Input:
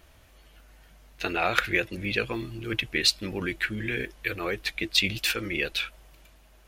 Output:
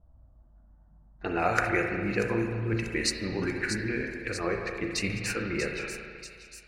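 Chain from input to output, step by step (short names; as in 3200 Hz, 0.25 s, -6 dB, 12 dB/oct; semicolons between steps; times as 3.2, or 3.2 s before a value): low-pass opened by the level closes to 390 Hz, open at -22.5 dBFS; envelope phaser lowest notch 350 Hz, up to 3400 Hz, full sweep at -30.5 dBFS; on a send: thin delay 0.638 s, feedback 59%, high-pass 4400 Hz, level -6 dB; on the sum: spring tank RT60 1.9 s, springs 35/53 ms, chirp 50 ms, DRR 2 dB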